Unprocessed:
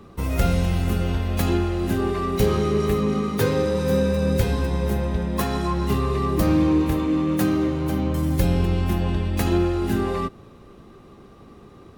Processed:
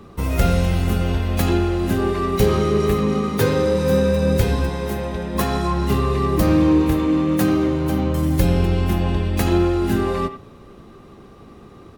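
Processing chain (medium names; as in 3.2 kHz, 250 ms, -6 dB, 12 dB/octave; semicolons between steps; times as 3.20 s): 4.69–5.35 s: bass shelf 190 Hz -9 dB; speakerphone echo 90 ms, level -10 dB; trim +3 dB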